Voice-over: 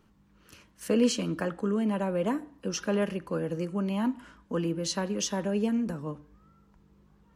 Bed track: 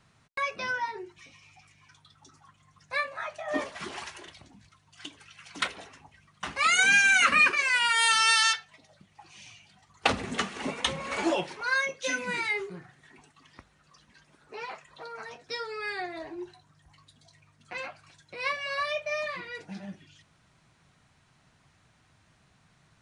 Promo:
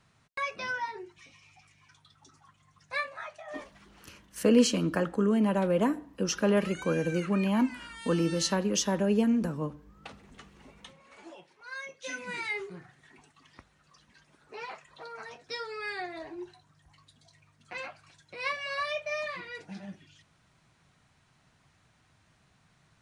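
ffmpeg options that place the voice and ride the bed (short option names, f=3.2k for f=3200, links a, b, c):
-filter_complex "[0:a]adelay=3550,volume=2.5dB[a];[1:a]volume=17.5dB,afade=t=out:st=2.98:d=0.87:silence=0.105925,afade=t=in:st=11.54:d=1.28:silence=0.1[b];[a][b]amix=inputs=2:normalize=0"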